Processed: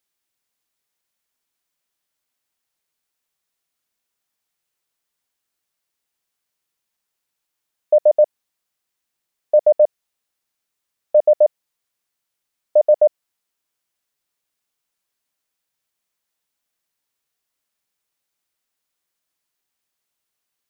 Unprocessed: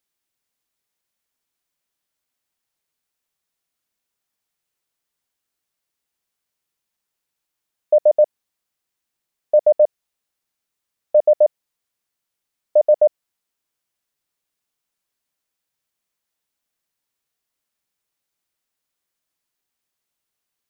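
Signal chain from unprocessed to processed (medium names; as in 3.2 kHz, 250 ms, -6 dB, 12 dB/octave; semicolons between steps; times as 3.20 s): bass shelf 410 Hz -3 dB; trim +1.5 dB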